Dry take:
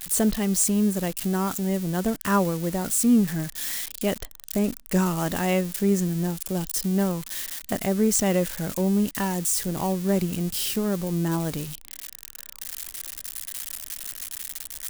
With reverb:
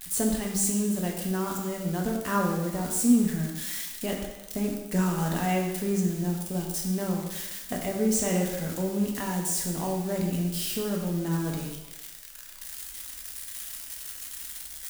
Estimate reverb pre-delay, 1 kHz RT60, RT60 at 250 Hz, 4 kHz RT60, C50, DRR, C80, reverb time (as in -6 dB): 4 ms, 1.1 s, 0.95 s, 1.0 s, 4.0 dB, -0.5 dB, 6.0 dB, 1.1 s